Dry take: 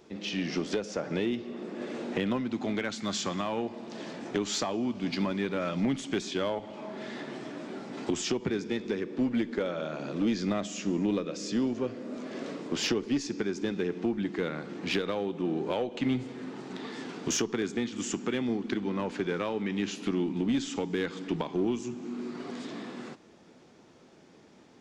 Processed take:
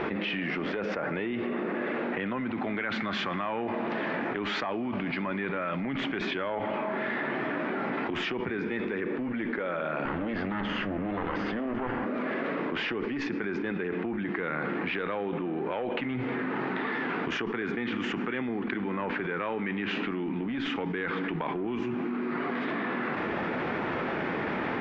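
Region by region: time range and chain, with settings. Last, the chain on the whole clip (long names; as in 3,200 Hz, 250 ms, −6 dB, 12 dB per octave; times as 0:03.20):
0:10.05–0:12.06: lower of the sound and its delayed copy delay 0.63 ms + high-frequency loss of the air 92 metres + mains-hum notches 60/120/180/240/300/360/420 Hz
whole clip: low-pass filter 2,000 Hz 24 dB per octave; tilt shelving filter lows −8.5 dB, about 1,200 Hz; envelope flattener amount 100%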